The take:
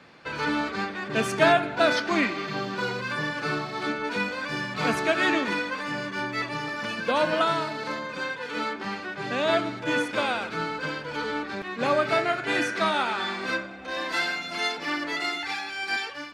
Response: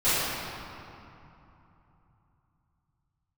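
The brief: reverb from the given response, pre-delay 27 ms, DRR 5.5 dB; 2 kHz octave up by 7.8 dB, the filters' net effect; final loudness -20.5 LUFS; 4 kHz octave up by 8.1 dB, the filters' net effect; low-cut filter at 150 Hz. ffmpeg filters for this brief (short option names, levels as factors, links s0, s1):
-filter_complex "[0:a]highpass=150,equalizer=f=2000:t=o:g=8.5,equalizer=f=4000:t=o:g=7,asplit=2[s0][s1];[1:a]atrim=start_sample=2205,adelay=27[s2];[s1][s2]afir=irnorm=-1:irlink=0,volume=0.0794[s3];[s0][s3]amix=inputs=2:normalize=0,volume=0.944"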